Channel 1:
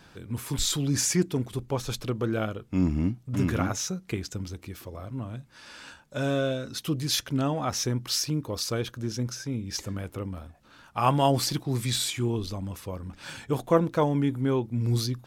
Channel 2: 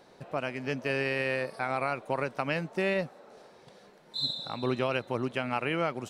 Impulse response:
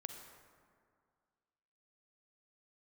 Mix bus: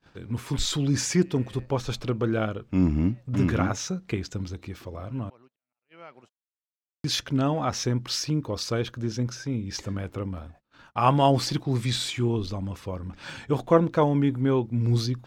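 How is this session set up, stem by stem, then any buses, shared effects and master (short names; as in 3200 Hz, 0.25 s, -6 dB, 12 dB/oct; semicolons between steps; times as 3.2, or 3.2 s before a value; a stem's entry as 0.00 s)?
+2.5 dB, 0.00 s, muted 5.3–7.04, no send, dry
-7.5 dB, 0.20 s, no send, low shelf 480 Hz -8 dB; auto swell 0.611 s; auto duck -13 dB, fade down 1.70 s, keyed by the first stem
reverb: off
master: gate -50 dBFS, range -27 dB; bell 12000 Hz -14.5 dB 1.1 oct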